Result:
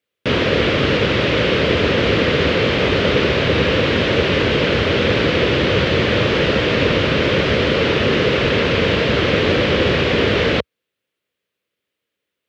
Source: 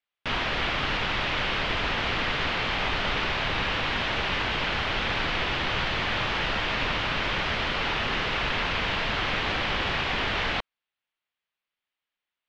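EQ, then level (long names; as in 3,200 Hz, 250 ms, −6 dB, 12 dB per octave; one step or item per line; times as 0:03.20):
high-pass filter 69 Hz 24 dB per octave
low shelf with overshoot 630 Hz +7.5 dB, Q 3
+8.0 dB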